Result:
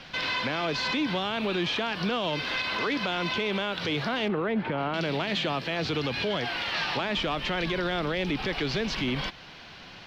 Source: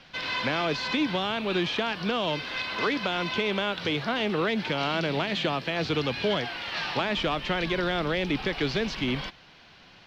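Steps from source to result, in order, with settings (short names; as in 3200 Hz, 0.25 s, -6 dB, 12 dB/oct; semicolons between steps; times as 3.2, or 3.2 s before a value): 4.28–4.94 LPF 1600 Hz 12 dB/oct; in parallel at +1.5 dB: compressor, threshold -37 dBFS, peak gain reduction 14 dB; on the sum: limiter -20.5 dBFS, peak gain reduction 6.5 dB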